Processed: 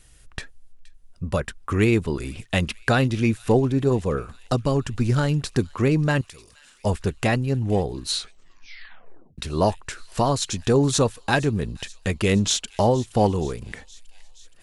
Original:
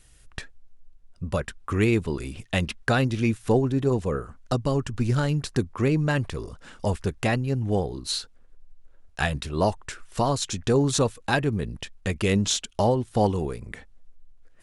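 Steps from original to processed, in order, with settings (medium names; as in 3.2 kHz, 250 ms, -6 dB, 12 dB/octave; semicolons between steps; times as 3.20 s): 6.21–6.85 s: pre-emphasis filter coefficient 0.9; feedback echo behind a high-pass 471 ms, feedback 68%, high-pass 2.8 kHz, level -18.5 dB; 8.13 s: tape stop 1.25 s; trim +2.5 dB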